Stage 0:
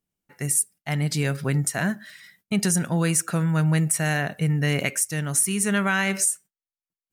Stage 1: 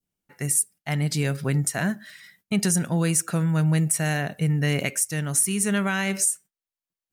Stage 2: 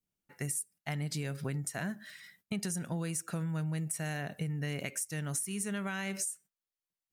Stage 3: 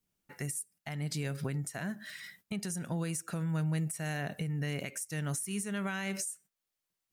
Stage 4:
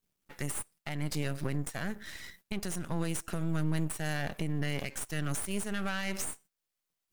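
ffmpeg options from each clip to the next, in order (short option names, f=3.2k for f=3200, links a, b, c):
-af "adynamicequalizer=threshold=0.0141:dfrequency=1400:dqfactor=0.78:tfrequency=1400:tqfactor=0.78:attack=5:release=100:ratio=0.375:range=3:mode=cutabove:tftype=bell"
-af "acompressor=threshold=-28dB:ratio=6,volume=-5dB"
-af "alimiter=level_in=8dB:limit=-24dB:level=0:latency=1:release=441,volume=-8dB,volume=6dB"
-af "aeval=exprs='max(val(0),0)':c=same,volume=5dB"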